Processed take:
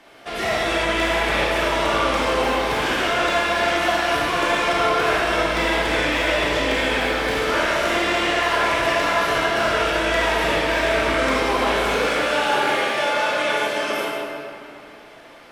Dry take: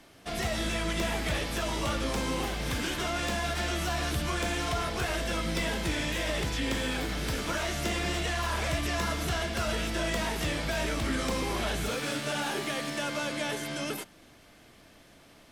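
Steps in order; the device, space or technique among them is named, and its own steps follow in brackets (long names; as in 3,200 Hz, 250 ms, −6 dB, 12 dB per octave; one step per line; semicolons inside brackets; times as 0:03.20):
stairwell (convolution reverb RT60 2.6 s, pre-delay 25 ms, DRR −5.5 dB)
bass and treble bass −15 dB, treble −10 dB
level +7.5 dB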